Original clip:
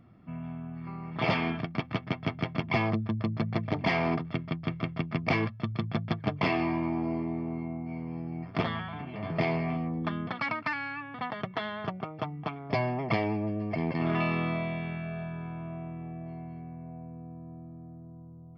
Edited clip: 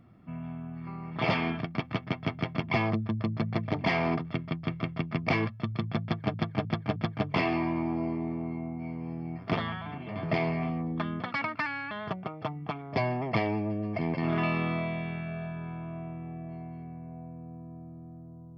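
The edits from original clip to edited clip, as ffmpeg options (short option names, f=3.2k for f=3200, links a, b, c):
-filter_complex "[0:a]asplit=5[a][b][c][d][e];[a]atrim=end=6.342[f];[b]atrim=start=6.028:end=6.342[g];[c]atrim=start=6.028:end=6.342[h];[d]atrim=start=6.028:end=10.982[i];[e]atrim=start=11.678[j];[f][g]acrossfade=d=0.004:c1=hsin:c2=hsin[k];[k][h]acrossfade=d=0.004:c1=hsin:c2=hsin[l];[l][i]acrossfade=d=0.004:c1=hsin:c2=hsin[m];[m][j]acrossfade=d=0.004:c1=hsin:c2=hsin"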